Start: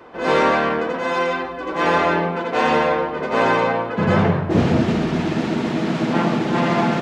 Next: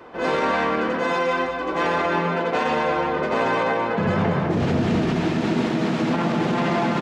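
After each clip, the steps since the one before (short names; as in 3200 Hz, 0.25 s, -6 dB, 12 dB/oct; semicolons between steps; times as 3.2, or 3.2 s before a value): echo 0.205 s -8 dB; limiter -13 dBFS, peak gain reduction 9.5 dB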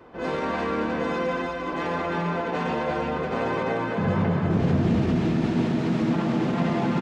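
low shelf 260 Hz +10 dB; echo 0.348 s -4.5 dB; gain -8 dB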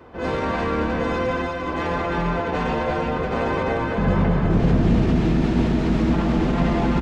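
octaver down 2 oct, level -3 dB; gain +3 dB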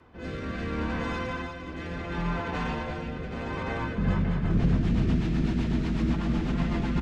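bell 520 Hz -8 dB 1.6 oct; rotary speaker horn 0.7 Hz, later 8 Hz, at 3.64; gain -3.5 dB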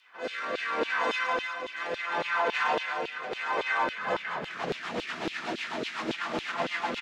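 LFO high-pass saw down 3.6 Hz 430–3500 Hz; gain +4 dB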